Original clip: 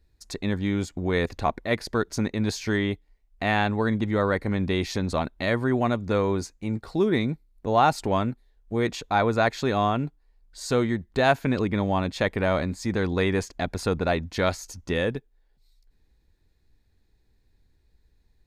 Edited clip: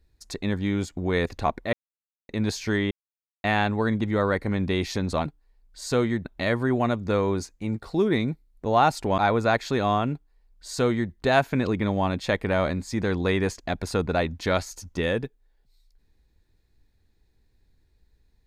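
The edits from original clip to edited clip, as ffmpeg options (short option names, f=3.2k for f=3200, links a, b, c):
-filter_complex "[0:a]asplit=8[a][b][c][d][e][f][g][h];[a]atrim=end=1.73,asetpts=PTS-STARTPTS,afade=t=out:st=1.726:d=0.004:c=hsin[i];[b]atrim=start=1.73:end=2.29,asetpts=PTS-STARTPTS,volume=0[j];[c]atrim=start=2.29:end=2.91,asetpts=PTS-STARTPTS,afade=t=in:d=0.004:c=hsin,afade=t=out:st=0.616:d=0.004:c=hsin[k];[d]atrim=start=2.91:end=3.44,asetpts=PTS-STARTPTS,volume=0[l];[e]atrim=start=3.44:end=5.262,asetpts=PTS-STARTPTS,afade=t=in:d=0.004:c=hsin[m];[f]atrim=start=10.048:end=11.042[n];[g]atrim=start=5.258:end=8.192[o];[h]atrim=start=9.098[p];[i][j][k][l][m]concat=n=5:v=0:a=1[q];[q][n]acrossfade=d=0.004:c1=hsin:c2=hsin[r];[r][o]acrossfade=d=0.004:c1=hsin:c2=hsin[s];[s][p]acrossfade=d=0.004:c1=hsin:c2=hsin"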